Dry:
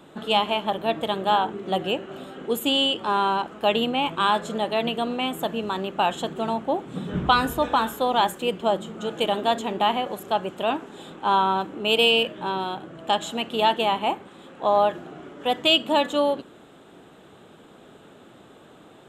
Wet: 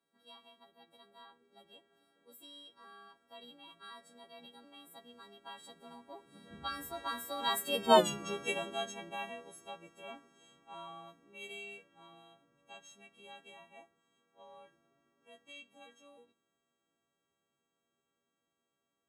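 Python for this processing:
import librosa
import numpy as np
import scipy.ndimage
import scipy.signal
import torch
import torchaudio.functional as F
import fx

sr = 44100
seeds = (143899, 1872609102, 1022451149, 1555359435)

y = fx.freq_snap(x, sr, grid_st=3)
y = fx.doppler_pass(y, sr, speed_mps=30, closest_m=3.2, pass_at_s=8.0)
y = fx.doubler(y, sr, ms=13.0, db=-12.5)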